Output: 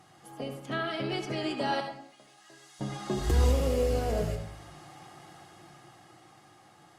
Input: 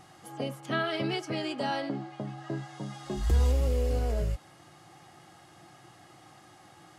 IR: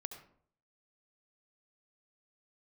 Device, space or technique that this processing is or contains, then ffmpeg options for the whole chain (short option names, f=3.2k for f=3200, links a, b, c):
far-field microphone of a smart speaker: -filter_complex "[0:a]asettb=1/sr,asplit=3[a][b][c];[a]atrim=end=1.804[d];[b]atrim=start=1.8:end=2.81,asetpts=PTS-STARTPTS,afade=t=in:d=0.004:c=qsin,afade=t=out:st=1.006:d=0.004:c=qsin,aderivative[e];[c]atrim=start=2.806[f];[d][e]acrossfade=d=0.004:c1=hsin:c2=qsin[g];[g][f]acrossfade=d=0.004:c1=qsin:c2=hsin[h];[1:a]atrim=start_sample=2205[i];[h][i]afir=irnorm=-1:irlink=0,highpass=85,dynaudnorm=f=260:g=13:m=7.5dB" -ar 48000 -c:a libopus -b:a 48k